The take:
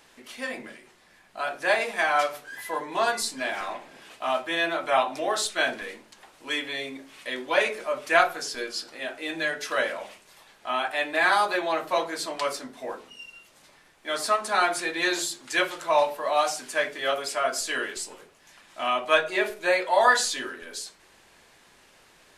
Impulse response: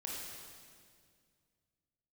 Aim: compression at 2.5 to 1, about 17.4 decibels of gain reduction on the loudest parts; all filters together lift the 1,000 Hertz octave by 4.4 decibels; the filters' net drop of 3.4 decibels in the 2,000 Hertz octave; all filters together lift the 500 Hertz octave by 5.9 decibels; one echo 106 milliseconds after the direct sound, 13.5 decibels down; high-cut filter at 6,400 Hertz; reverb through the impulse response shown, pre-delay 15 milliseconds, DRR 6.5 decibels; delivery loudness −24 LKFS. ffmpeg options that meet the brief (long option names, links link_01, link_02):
-filter_complex "[0:a]lowpass=6400,equalizer=frequency=500:width_type=o:gain=6,equalizer=frequency=1000:width_type=o:gain=5.5,equalizer=frequency=2000:width_type=o:gain=-7,acompressor=threshold=-38dB:ratio=2.5,aecho=1:1:106:0.211,asplit=2[link_01][link_02];[1:a]atrim=start_sample=2205,adelay=15[link_03];[link_02][link_03]afir=irnorm=-1:irlink=0,volume=-6.5dB[link_04];[link_01][link_04]amix=inputs=2:normalize=0,volume=11.5dB"